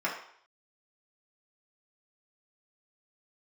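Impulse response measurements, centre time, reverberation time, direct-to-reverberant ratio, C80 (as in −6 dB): 31 ms, 0.60 s, −5.5 dB, 9.0 dB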